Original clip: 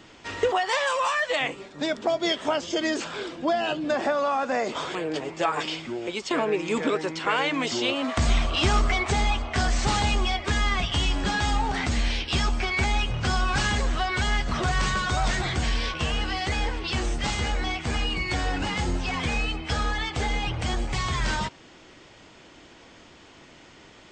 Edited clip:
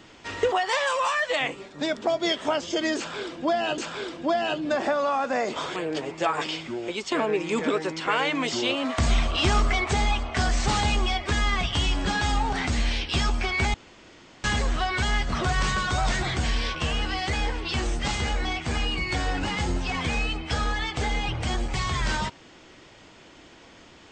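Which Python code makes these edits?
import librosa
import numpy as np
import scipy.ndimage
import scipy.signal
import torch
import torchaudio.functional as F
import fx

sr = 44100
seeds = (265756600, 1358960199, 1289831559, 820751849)

y = fx.edit(x, sr, fx.repeat(start_s=2.97, length_s=0.81, count=2),
    fx.room_tone_fill(start_s=12.93, length_s=0.7), tone=tone)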